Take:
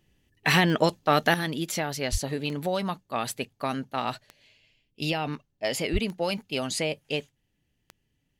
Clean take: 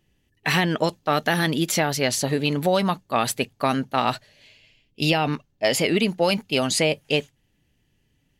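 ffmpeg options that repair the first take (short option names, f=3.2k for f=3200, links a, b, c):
-filter_complex "[0:a]adeclick=t=4,asplit=3[a][b][c];[a]afade=t=out:st=2.11:d=0.02[d];[b]highpass=f=140:w=0.5412,highpass=f=140:w=1.3066,afade=t=in:st=2.11:d=0.02,afade=t=out:st=2.23:d=0.02[e];[c]afade=t=in:st=2.23:d=0.02[f];[d][e][f]amix=inputs=3:normalize=0,asplit=3[g][h][i];[g]afade=t=out:st=5.92:d=0.02[j];[h]highpass=f=140:w=0.5412,highpass=f=140:w=1.3066,afade=t=in:st=5.92:d=0.02,afade=t=out:st=6.04:d=0.02[k];[i]afade=t=in:st=6.04:d=0.02[l];[j][k][l]amix=inputs=3:normalize=0,asetnsamples=n=441:p=0,asendcmd='1.34 volume volume 7.5dB',volume=0dB"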